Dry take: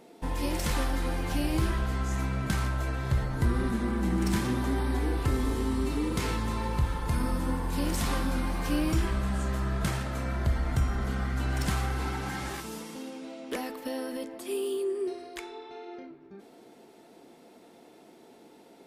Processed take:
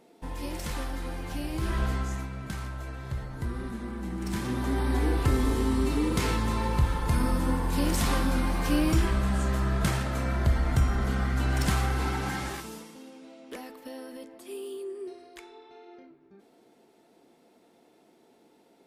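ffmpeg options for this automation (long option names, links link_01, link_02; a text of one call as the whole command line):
ffmpeg -i in.wav -af "volume=12.5dB,afade=type=in:start_time=1.59:duration=0.25:silence=0.421697,afade=type=out:start_time=1.84:duration=0.44:silence=0.334965,afade=type=in:start_time=4.2:duration=0.83:silence=0.316228,afade=type=out:start_time=12.29:duration=0.65:silence=0.316228" out.wav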